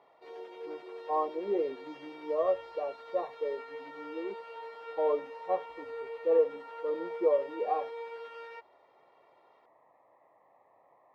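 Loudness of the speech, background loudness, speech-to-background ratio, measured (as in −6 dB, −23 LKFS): −33.0 LKFS, −44.0 LKFS, 11.0 dB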